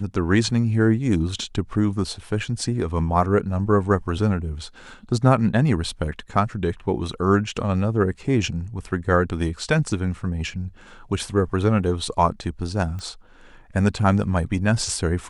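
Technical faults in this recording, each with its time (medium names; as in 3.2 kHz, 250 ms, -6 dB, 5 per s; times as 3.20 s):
12.99 s: pop -22 dBFS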